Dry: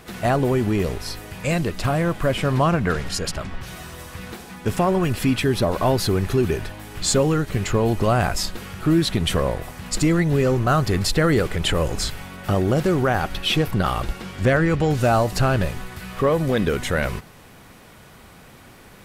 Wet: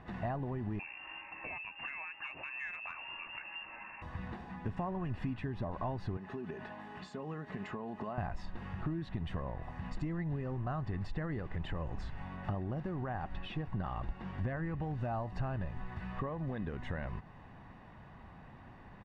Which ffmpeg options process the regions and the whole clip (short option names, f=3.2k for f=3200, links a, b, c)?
-filter_complex "[0:a]asettb=1/sr,asplit=3[a][b][c];[a]atrim=end=0.794[d];[b]atrim=start=0.79:end=4.02,asetpts=PTS-STARTPTS,afade=t=in:d=0.004:c=qsin,afade=t=out:st=3.226:d=0.004:c=qsin,lowpass=f=2.4k:t=q:w=0.5098,lowpass=f=2.4k:t=q:w=0.6013,lowpass=f=2.4k:t=q:w=0.9,lowpass=f=2.4k:t=q:w=2.563,afreqshift=-2800,volume=11.5dB,asoftclip=hard,volume=-11.5dB[e];[c]atrim=start=4.016[f];[d][e]acrossfade=d=0.004:c1=hsin:c2=qsin[g];[g][f]acrossfade=d=0.004:c1=qsin:c2=hsin,asettb=1/sr,asplit=3[h][i][j];[h]atrim=end=6.174[k];[i]atrim=start=6.17:end=8.18,asetpts=PTS-STARTPTS,afade=t=in:d=0.004:c=qsin,afade=t=out:st=2.006:d=0.004:c=qsin,highpass=220,aecho=1:1:4.7:0.42,atrim=end_sample=88641,acompressor=threshold=-28dB:ratio=2:attack=3.2:release=140:knee=1:detection=peak[l];[j]atrim=start=8.176[m];[k][l]acrossfade=d=0.004:c1=hsin:c2=qsin[n];[n][m]acrossfade=d=0.004:c1=qsin:c2=hsin,acompressor=threshold=-29dB:ratio=4,lowpass=1.7k,aecho=1:1:1.1:0.48,volume=-7.5dB"